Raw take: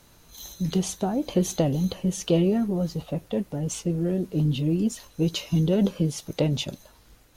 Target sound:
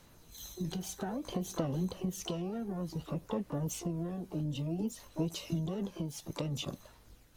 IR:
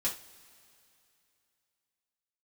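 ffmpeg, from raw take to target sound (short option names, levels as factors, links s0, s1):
-filter_complex "[0:a]acompressor=threshold=0.0447:ratio=6,aphaser=in_gain=1:out_gain=1:delay=1.3:decay=0.32:speed=0.58:type=sinusoidal,asplit=2[s0][s1];[s1]asetrate=88200,aresample=44100,atempo=0.5,volume=0.355[s2];[s0][s2]amix=inputs=2:normalize=0,volume=0.447"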